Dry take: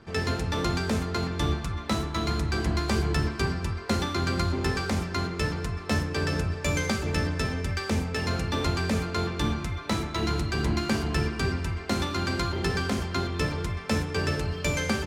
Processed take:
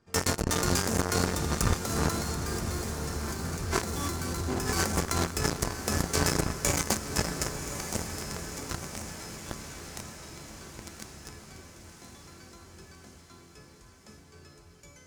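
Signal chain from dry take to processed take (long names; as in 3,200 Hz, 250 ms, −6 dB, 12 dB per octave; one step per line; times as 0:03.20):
source passing by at 0:03.22, 8 m/s, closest 1.9 metres
in parallel at −5.5 dB: fuzz pedal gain 45 dB, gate −46 dBFS
on the sum: high shelf with overshoot 4,900 Hz +6.5 dB, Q 1.5
compressor whose output falls as the input rises −30 dBFS, ratio −1
on a send: feedback delay with all-pass diffusion 1,107 ms, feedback 55%, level −8.5 dB
on the sum: dynamic equaliser 3,000 Hz, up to −4 dB, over −45 dBFS, Q 0.89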